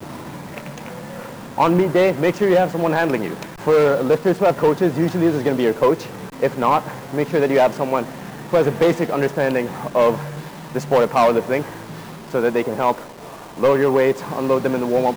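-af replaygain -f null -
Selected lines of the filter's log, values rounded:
track_gain = -1.8 dB
track_peak = 0.337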